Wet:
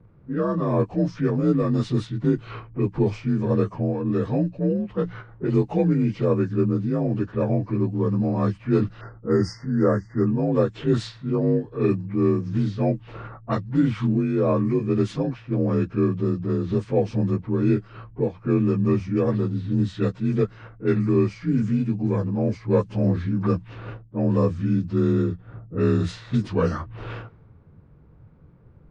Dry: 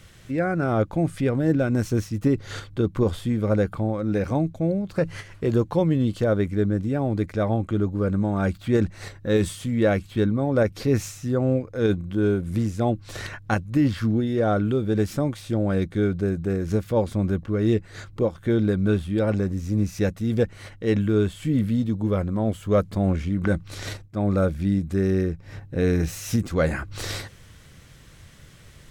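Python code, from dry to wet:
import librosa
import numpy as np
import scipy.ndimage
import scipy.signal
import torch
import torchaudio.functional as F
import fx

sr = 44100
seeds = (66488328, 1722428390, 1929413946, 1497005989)

y = fx.partial_stretch(x, sr, pct=86)
y = fx.env_lowpass(y, sr, base_hz=540.0, full_db=-18.5)
y = fx.brickwall_bandstop(y, sr, low_hz=2100.0, high_hz=4500.0, at=(9.01, 10.27))
y = F.gain(torch.from_numpy(y), 1.5).numpy()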